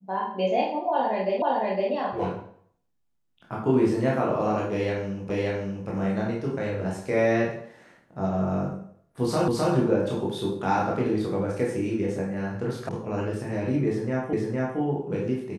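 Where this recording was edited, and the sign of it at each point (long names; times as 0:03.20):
0:01.42: the same again, the last 0.51 s
0:05.30: the same again, the last 0.58 s
0:09.48: the same again, the last 0.26 s
0:12.89: cut off before it has died away
0:14.33: the same again, the last 0.46 s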